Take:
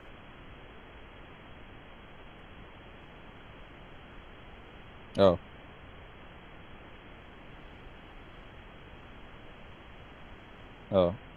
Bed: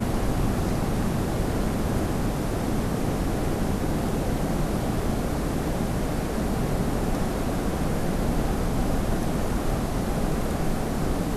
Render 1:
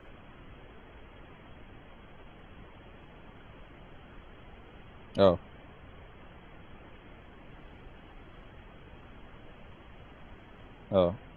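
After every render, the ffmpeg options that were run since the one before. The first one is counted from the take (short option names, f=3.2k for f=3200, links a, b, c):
-af "afftdn=nr=6:nf=-51"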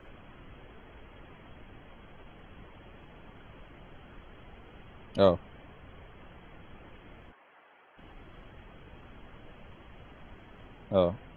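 -filter_complex "[0:a]asplit=3[a][b][c];[a]afade=t=out:st=7.31:d=0.02[d];[b]highpass=730,lowpass=2.2k,afade=t=in:st=7.31:d=0.02,afade=t=out:st=7.97:d=0.02[e];[c]afade=t=in:st=7.97:d=0.02[f];[d][e][f]amix=inputs=3:normalize=0"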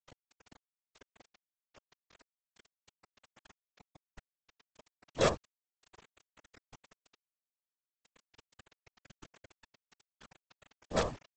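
-af "aresample=16000,acrusher=bits=4:dc=4:mix=0:aa=0.000001,aresample=44100,afftfilt=real='hypot(re,im)*cos(2*PI*random(0))':imag='hypot(re,im)*sin(2*PI*random(1))':win_size=512:overlap=0.75"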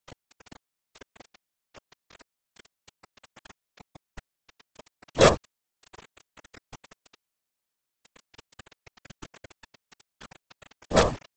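-af "volume=11dB"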